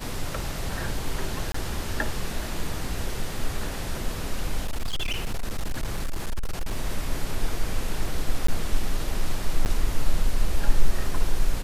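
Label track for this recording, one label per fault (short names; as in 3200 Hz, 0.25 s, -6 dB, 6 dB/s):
1.520000	1.540000	gap 24 ms
4.640000	6.770000	clipped -22.5 dBFS
8.470000	8.480000	gap 14 ms
9.650000	9.660000	gap 9.8 ms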